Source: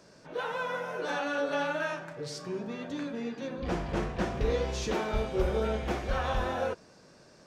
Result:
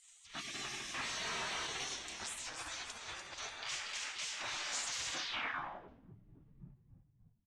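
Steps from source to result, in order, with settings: spectral gate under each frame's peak -25 dB weak; 2.26–3.37 negative-ratio compressor -55 dBFS, ratio -0.5; limiter -41 dBFS, peak gain reduction 10 dB; on a send: frequency-shifting echo 0.294 s, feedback 48%, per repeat -74 Hz, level -7 dB; 0.94–1.66 on the sum: overdrive pedal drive 23 dB, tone 1800 Hz, clips at -38 dBFS; low-pass sweep 7800 Hz -> 140 Hz, 5.12–6.16; gain +7.5 dB

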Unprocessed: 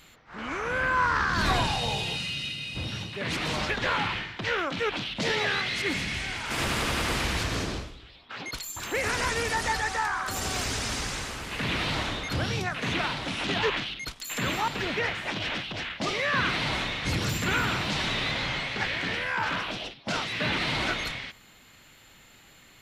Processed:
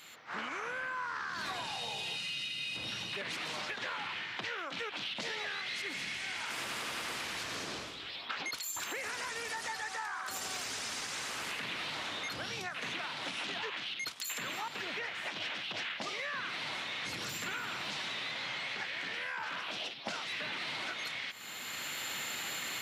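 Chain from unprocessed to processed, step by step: recorder AGC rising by 19 dB/s; HPF 140 Hz 12 dB/oct; low shelf 480 Hz -10.5 dB; compressor, threshold -38 dBFS, peak gain reduction 14.5 dB; gain +1.5 dB

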